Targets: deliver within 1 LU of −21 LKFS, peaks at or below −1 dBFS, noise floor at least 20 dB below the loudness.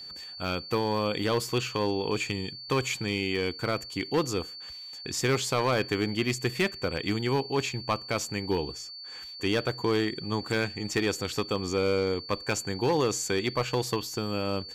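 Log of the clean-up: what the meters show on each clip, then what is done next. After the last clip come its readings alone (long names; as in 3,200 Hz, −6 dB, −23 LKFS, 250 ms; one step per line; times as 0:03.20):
share of clipped samples 0.8%; peaks flattened at −19.0 dBFS; interfering tone 4,500 Hz; level of the tone −40 dBFS; integrated loudness −29.0 LKFS; sample peak −19.0 dBFS; target loudness −21.0 LKFS
→ clipped peaks rebuilt −19 dBFS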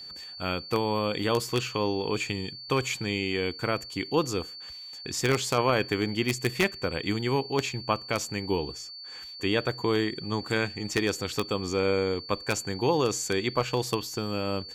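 share of clipped samples 0.0%; interfering tone 4,500 Hz; level of the tone −40 dBFS
→ notch filter 4,500 Hz, Q 30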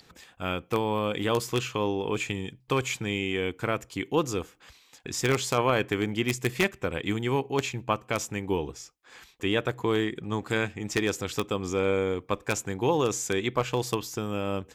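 interfering tone none found; integrated loudness −28.5 LKFS; sample peak −10.0 dBFS; target loudness −21.0 LKFS
→ level +7.5 dB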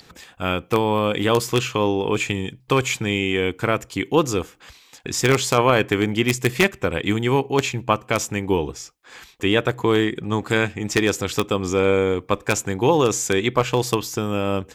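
integrated loudness −21.0 LKFS; sample peak −2.5 dBFS; background noise floor −52 dBFS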